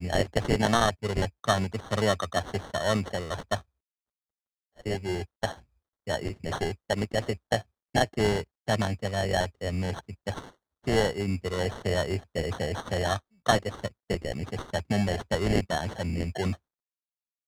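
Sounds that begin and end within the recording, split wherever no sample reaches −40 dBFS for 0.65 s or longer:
0:04.79–0:16.55

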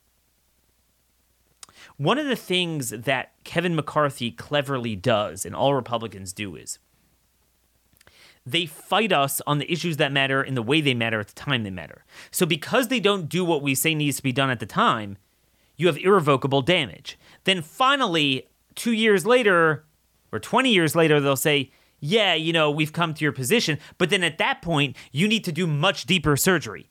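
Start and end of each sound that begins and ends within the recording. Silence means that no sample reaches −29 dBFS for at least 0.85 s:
0:01.63–0:06.73

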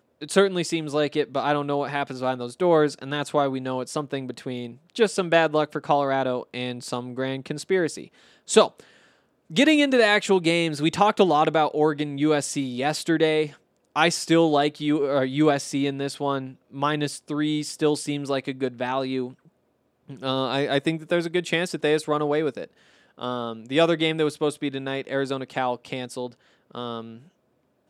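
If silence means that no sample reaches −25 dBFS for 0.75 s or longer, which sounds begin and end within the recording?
0:09.56–0:19.26
0:20.24–0:27.00

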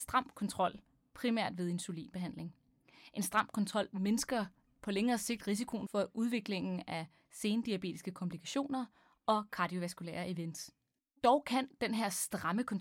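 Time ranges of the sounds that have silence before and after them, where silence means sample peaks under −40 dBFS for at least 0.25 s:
0:01.16–0:02.48
0:03.16–0:04.44
0:04.84–0:07.04
0:07.37–0:08.84
0:09.28–0:10.65

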